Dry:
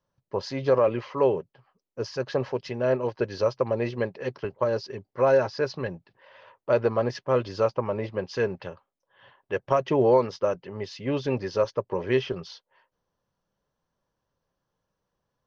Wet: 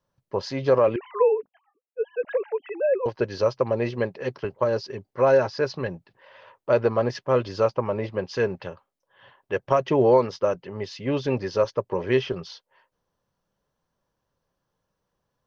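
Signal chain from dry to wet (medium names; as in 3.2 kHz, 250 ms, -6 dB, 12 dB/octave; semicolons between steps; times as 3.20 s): 0.96–3.06 s: formants replaced by sine waves; trim +2 dB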